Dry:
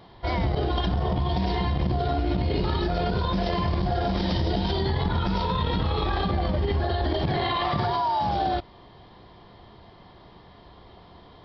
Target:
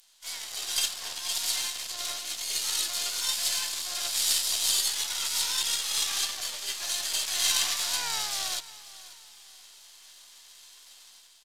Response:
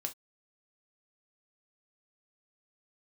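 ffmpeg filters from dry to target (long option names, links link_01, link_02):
-filter_complex "[0:a]highpass=340,aderivative,dynaudnorm=framelen=130:gausssize=7:maxgain=10dB,asplit=3[link_01][link_02][link_03];[link_02]asetrate=37084,aresample=44100,atempo=1.18921,volume=-8dB[link_04];[link_03]asetrate=66075,aresample=44100,atempo=0.66742,volume=-5dB[link_05];[link_01][link_04][link_05]amix=inputs=3:normalize=0,aeval=exprs='max(val(0),0)':channel_layout=same,crystalizer=i=10:c=0,asplit=2[link_06][link_07];[link_07]aecho=0:1:538|1076|1614:0.126|0.0428|0.0146[link_08];[link_06][link_08]amix=inputs=2:normalize=0,aresample=32000,aresample=44100,volume=-8dB"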